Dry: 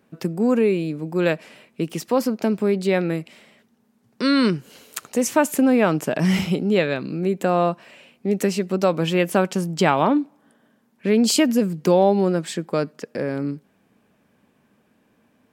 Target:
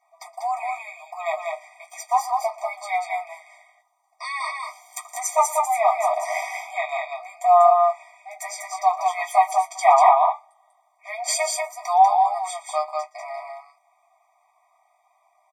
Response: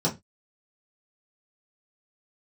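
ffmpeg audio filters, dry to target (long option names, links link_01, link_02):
-filter_complex "[0:a]aecho=1:1:119|193:0.1|0.668[link_01];[1:a]atrim=start_sample=2205,asetrate=66150,aresample=44100[link_02];[link_01][link_02]afir=irnorm=-1:irlink=0,afftfilt=real='re*eq(mod(floor(b*sr/1024/630),2),1)':imag='im*eq(mod(floor(b*sr/1024/630),2),1)':win_size=1024:overlap=0.75,volume=-4.5dB"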